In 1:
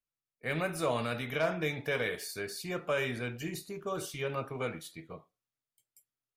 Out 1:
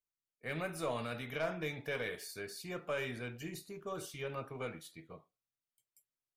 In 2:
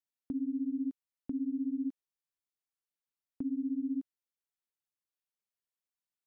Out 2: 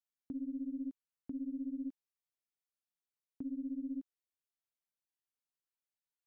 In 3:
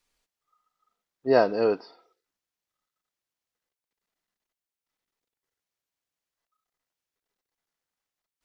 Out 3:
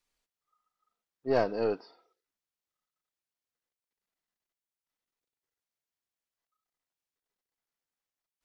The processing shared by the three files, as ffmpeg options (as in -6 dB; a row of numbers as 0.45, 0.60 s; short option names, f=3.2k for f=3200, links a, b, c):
-af "aeval=exprs='(tanh(3.98*val(0)+0.4)-tanh(0.4))/3.98':c=same,volume=-4.5dB"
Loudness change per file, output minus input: -6.0, -6.0, -6.5 LU